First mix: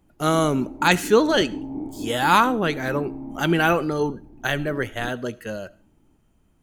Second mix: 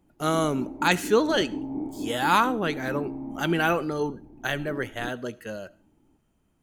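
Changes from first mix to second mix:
speech -4.0 dB; master: add bass shelf 80 Hz -7 dB

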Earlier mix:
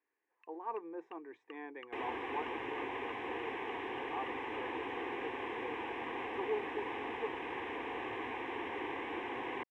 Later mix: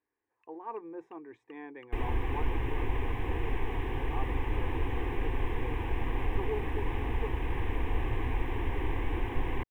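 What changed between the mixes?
first sound -6.0 dB; second sound: add bass shelf 190 Hz +6 dB; master: remove band-pass 320–5500 Hz

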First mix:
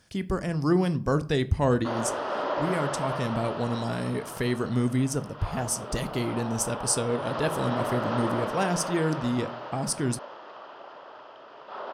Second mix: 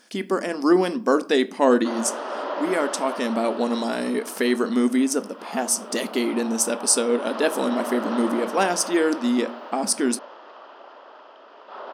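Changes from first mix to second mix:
speech +7.0 dB; master: add brick-wall FIR high-pass 200 Hz

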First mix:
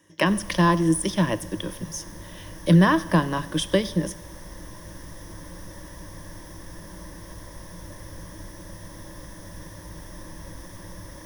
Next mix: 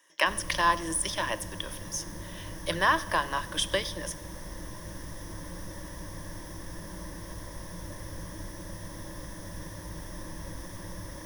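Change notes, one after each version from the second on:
speech: add high-pass 780 Hz 12 dB/octave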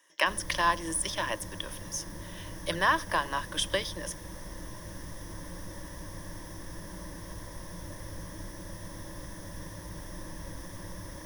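reverb: off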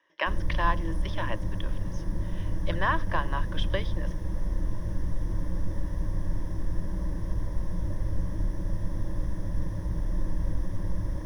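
speech: add distance through air 310 m; background: add tilt EQ -3.5 dB/octave

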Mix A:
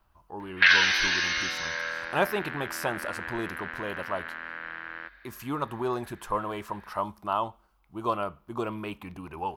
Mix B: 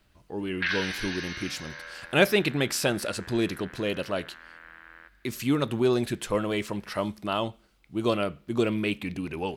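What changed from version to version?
speech: add ten-band graphic EQ 125 Hz +7 dB, 250 Hz +8 dB, 500 Hz +7 dB, 1 kHz -11 dB, 2 kHz +10 dB, 4 kHz +9 dB, 8 kHz +9 dB; background -10.0 dB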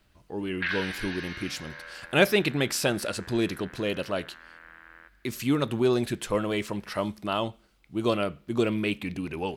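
background: add distance through air 160 m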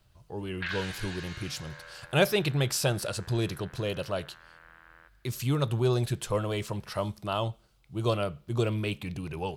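background: remove brick-wall FIR low-pass 6.3 kHz; master: add graphic EQ 125/250/2000 Hz +9/-11/-7 dB

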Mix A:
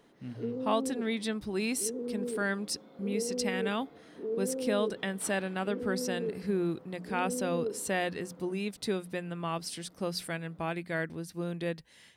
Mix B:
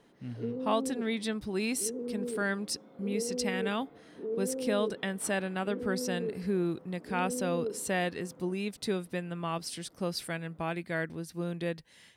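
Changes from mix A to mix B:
background: add distance through air 260 m; master: remove hum notches 60/120/180 Hz

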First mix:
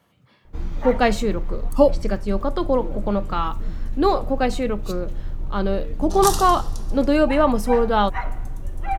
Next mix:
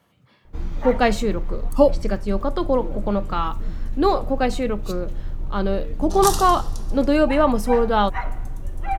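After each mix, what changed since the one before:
no change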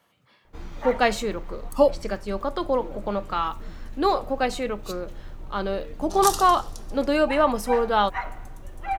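second sound: send -6.0 dB; master: add bass shelf 310 Hz -11.5 dB

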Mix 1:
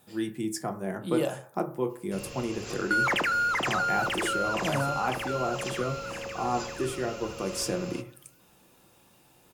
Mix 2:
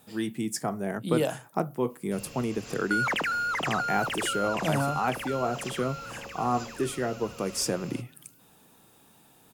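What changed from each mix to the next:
speech +6.5 dB; reverb: off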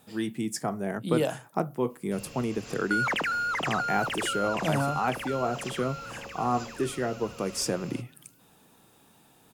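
master: add treble shelf 10 kHz -4.5 dB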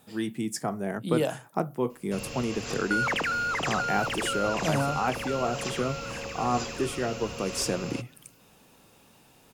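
first sound +8.0 dB

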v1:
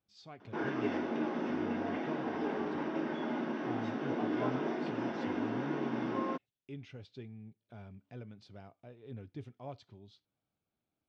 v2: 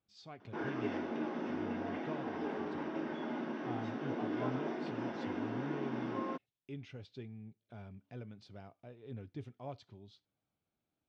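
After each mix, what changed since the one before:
background -3.5 dB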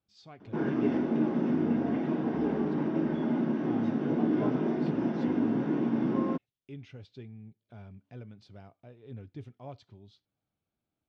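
background: remove high-pass 880 Hz 6 dB/octave; master: add bass shelf 130 Hz +5 dB

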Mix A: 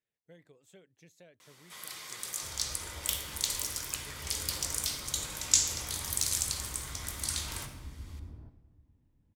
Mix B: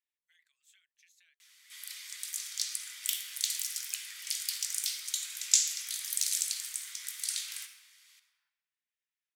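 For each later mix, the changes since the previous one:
master: add inverse Chebyshev high-pass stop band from 400 Hz, stop band 70 dB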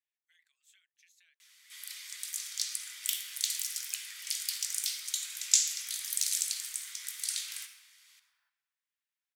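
second sound +6.0 dB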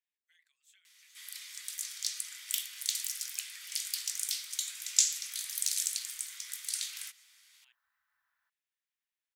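first sound: entry -0.55 s; reverb: off

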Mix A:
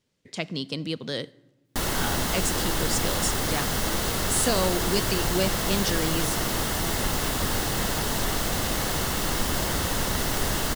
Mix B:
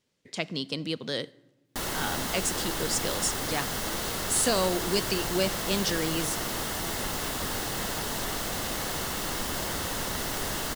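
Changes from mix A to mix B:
background -4.0 dB; master: add bass shelf 170 Hz -6.5 dB

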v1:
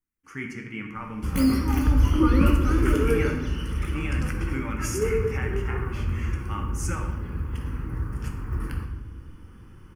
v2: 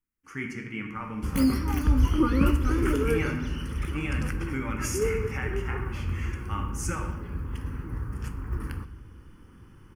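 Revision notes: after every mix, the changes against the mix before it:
background: send -9.5 dB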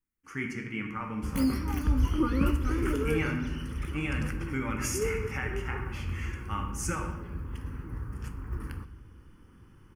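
background -4.0 dB

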